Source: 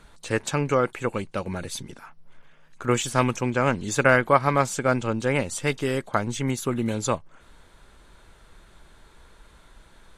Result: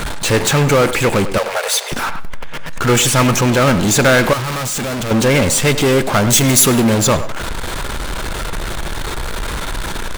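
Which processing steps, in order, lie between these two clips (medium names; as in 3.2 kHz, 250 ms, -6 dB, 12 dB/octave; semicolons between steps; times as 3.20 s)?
power-law waveshaper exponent 0.35; 1.38–1.92 s: steep high-pass 450 Hz 72 dB/octave; speakerphone echo 100 ms, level -9 dB; 4.33–5.11 s: hard clipper -19.5 dBFS, distortion -12 dB; 6.30–6.80 s: treble shelf 6 kHz +10 dB; reverberation, pre-delay 3 ms, DRR 19.5 dB; trim -1 dB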